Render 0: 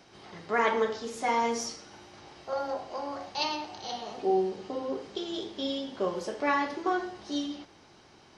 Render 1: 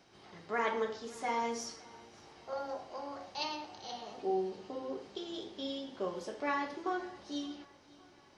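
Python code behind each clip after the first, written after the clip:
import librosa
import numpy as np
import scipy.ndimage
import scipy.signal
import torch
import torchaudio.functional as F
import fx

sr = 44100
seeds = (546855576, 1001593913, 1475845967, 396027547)

y = fx.echo_feedback(x, sr, ms=563, feedback_pct=53, wet_db=-23)
y = y * librosa.db_to_amplitude(-7.0)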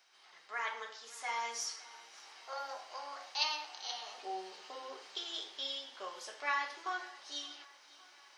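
y = scipy.signal.sosfilt(scipy.signal.butter(2, 1200.0, 'highpass', fs=sr, output='sos'), x)
y = fx.high_shelf(y, sr, hz=9400.0, db=3.5)
y = fx.rider(y, sr, range_db=5, speed_s=2.0)
y = y * librosa.db_to_amplitude(3.0)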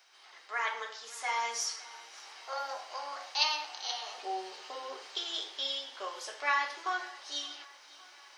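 y = scipy.signal.sosfilt(scipy.signal.butter(2, 300.0, 'highpass', fs=sr, output='sos'), x)
y = y * librosa.db_to_amplitude(5.0)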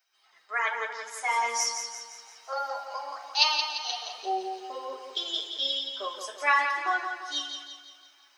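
y = fx.bin_expand(x, sr, power=1.5)
y = fx.echo_feedback(y, sr, ms=172, feedback_pct=49, wet_db=-7.0)
y = y * librosa.db_to_amplitude(7.5)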